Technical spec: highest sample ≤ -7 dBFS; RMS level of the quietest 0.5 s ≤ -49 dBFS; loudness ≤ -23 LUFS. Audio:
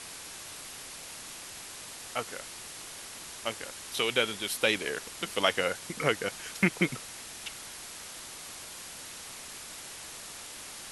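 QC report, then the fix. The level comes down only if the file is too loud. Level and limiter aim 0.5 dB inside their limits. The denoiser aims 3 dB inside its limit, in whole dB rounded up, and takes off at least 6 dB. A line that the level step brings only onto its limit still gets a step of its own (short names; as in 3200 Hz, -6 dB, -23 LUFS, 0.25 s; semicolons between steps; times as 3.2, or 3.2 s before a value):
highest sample -8.5 dBFS: OK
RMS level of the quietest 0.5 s -44 dBFS: fail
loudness -33.5 LUFS: OK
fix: denoiser 8 dB, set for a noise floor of -44 dBFS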